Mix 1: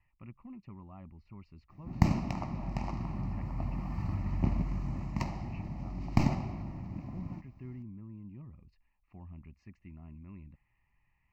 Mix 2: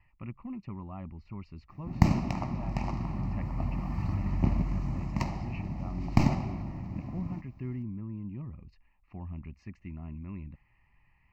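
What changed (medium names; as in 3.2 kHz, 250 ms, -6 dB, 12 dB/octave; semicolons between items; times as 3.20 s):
speech +8.0 dB; background +3.0 dB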